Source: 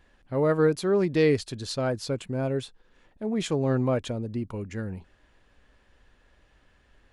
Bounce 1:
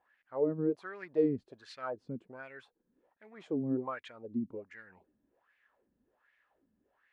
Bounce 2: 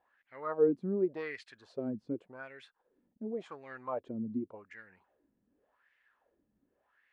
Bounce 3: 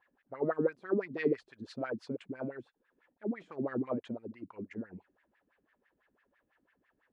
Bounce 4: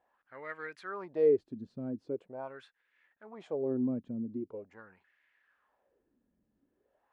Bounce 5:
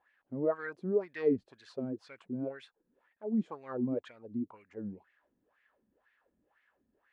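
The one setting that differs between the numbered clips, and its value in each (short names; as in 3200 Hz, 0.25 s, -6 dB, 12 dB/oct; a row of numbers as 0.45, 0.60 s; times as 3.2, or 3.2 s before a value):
wah, rate: 1.3, 0.88, 6, 0.43, 2 Hz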